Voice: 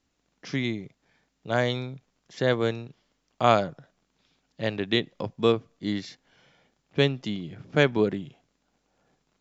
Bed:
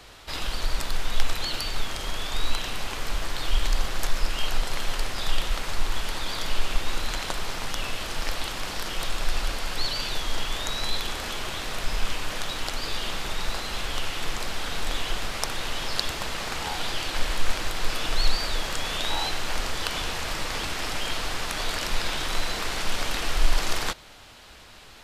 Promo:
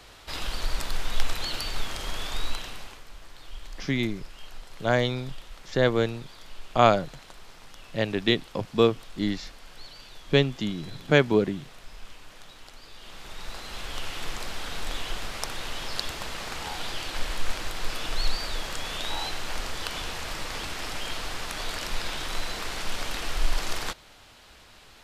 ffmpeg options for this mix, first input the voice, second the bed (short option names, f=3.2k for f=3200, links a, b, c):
-filter_complex "[0:a]adelay=3350,volume=1.5dB[a];[1:a]volume=11.5dB,afade=t=out:st=2.27:d=0.77:silence=0.16788,afade=t=in:st=12.96:d=1.18:silence=0.211349[b];[a][b]amix=inputs=2:normalize=0"